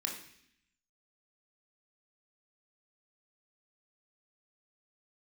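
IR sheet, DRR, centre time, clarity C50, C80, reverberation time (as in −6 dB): −0.5 dB, 29 ms, 6.5 dB, 9.5 dB, 0.65 s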